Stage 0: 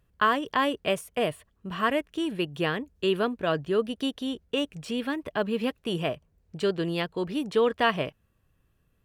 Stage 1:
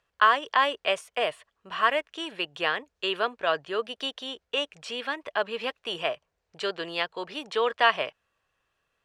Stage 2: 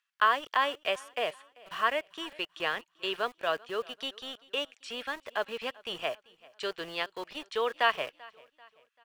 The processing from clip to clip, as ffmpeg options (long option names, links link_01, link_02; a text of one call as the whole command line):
ffmpeg -i in.wav -filter_complex "[0:a]acrossover=split=530 7700:gain=0.0794 1 0.0891[link_01][link_02][link_03];[link_01][link_02][link_03]amix=inputs=3:normalize=0,volume=4dB" out.wav
ffmpeg -i in.wav -filter_complex "[0:a]acrossover=split=1200[link_01][link_02];[link_01]aeval=exprs='val(0)*gte(abs(val(0)),0.01)':channel_layout=same[link_03];[link_03][link_02]amix=inputs=2:normalize=0,aecho=1:1:389|778|1167:0.0668|0.0294|0.0129,volume=-4.5dB" out.wav